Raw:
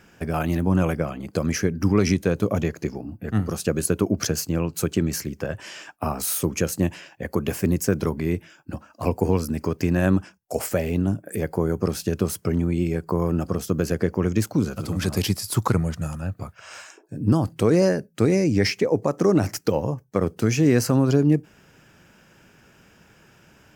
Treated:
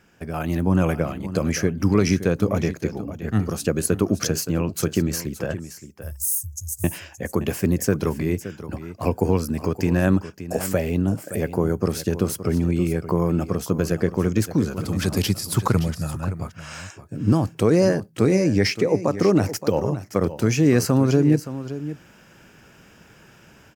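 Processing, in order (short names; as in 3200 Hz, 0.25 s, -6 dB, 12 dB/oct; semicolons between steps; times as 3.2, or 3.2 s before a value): 5.59–6.84 inverse Chebyshev band-stop 200–3000 Hz, stop band 50 dB; AGC gain up to 8.5 dB; echo 0.571 s -13 dB; gain -5 dB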